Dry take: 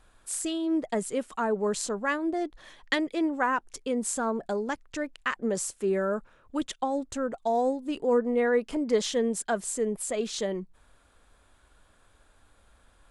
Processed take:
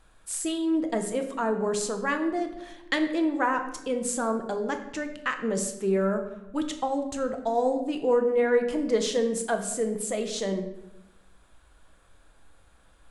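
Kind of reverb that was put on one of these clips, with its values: simulated room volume 340 m³, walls mixed, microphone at 0.66 m

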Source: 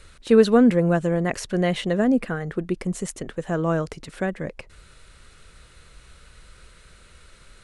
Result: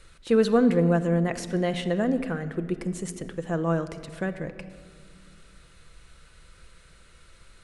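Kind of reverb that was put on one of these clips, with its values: simulated room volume 3400 m³, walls mixed, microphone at 0.75 m; trim -4.5 dB

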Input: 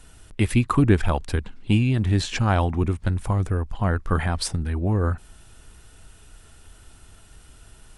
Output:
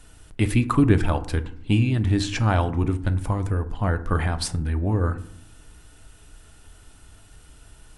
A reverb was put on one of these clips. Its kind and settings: FDN reverb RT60 0.62 s, low-frequency decay 1.45×, high-frequency decay 0.45×, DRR 9.5 dB; trim -1 dB

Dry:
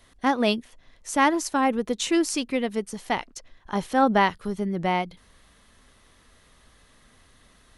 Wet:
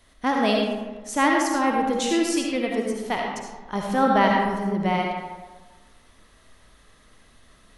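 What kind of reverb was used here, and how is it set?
algorithmic reverb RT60 1.3 s, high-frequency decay 0.5×, pre-delay 30 ms, DRR -0.5 dB; trim -1.5 dB

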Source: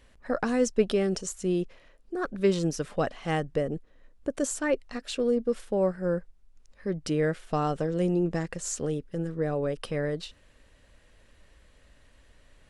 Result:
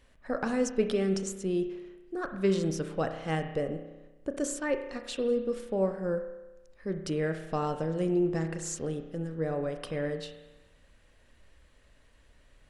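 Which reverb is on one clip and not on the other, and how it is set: spring tank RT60 1.1 s, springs 31 ms, chirp 75 ms, DRR 6.5 dB; trim -3.5 dB

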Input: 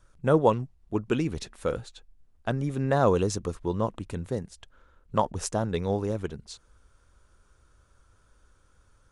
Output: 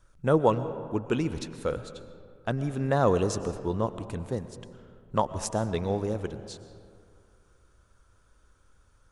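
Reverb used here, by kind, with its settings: algorithmic reverb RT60 2.3 s, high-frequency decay 0.45×, pre-delay 80 ms, DRR 12 dB; trim -1 dB

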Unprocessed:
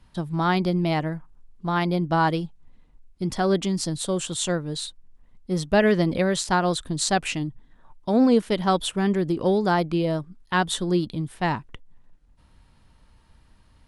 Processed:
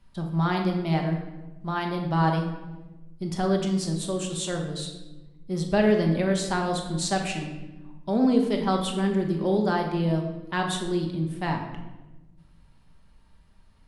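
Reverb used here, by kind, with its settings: simulated room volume 590 m³, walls mixed, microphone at 1.2 m; trim -6 dB

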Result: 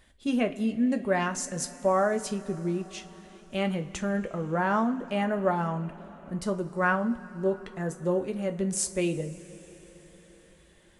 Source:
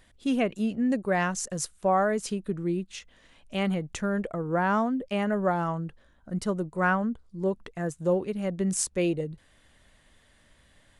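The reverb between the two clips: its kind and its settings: two-slope reverb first 0.23 s, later 4.9 s, from -22 dB, DRR 5.5 dB; trim -1.5 dB

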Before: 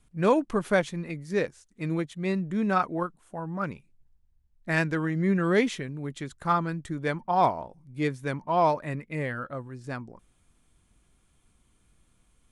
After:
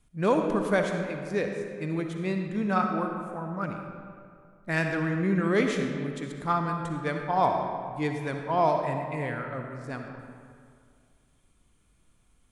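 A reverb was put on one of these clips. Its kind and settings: algorithmic reverb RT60 2.2 s, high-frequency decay 0.6×, pre-delay 20 ms, DRR 3.5 dB; trim -2 dB

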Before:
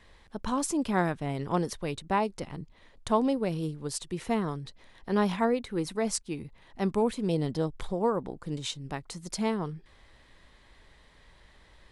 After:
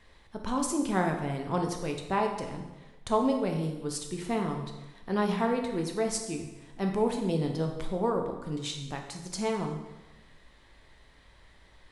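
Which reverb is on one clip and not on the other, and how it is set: plate-style reverb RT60 1.1 s, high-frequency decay 0.85×, DRR 2.5 dB; trim -2 dB

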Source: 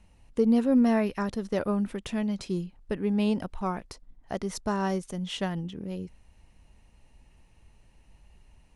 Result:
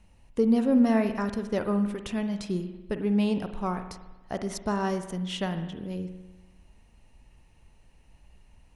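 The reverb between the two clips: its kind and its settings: spring tank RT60 1.1 s, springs 49 ms, chirp 70 ms, DRR 8.5 dB

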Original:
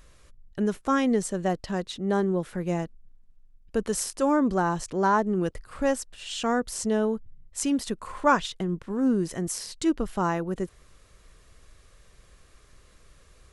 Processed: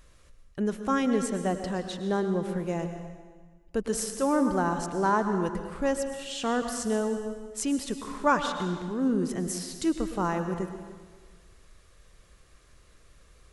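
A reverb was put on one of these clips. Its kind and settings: plate-style reverb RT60 1.5 s, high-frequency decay 0.9×, pre-delay 95 ms, DRR 7 dB; trim -2.5 dB

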